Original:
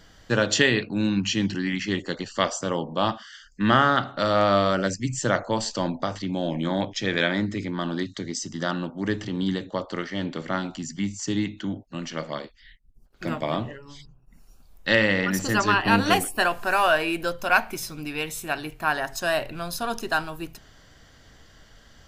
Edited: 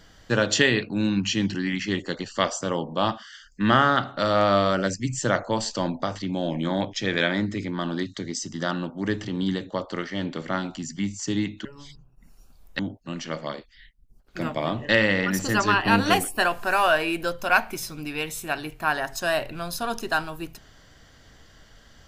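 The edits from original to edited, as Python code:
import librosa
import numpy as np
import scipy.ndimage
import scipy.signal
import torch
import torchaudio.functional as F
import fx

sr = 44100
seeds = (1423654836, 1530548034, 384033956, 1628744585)

y = fx.edit(x, sr, fx.move(start_s=13.75, length_s=1.14, to_s=11.65), tone=tone)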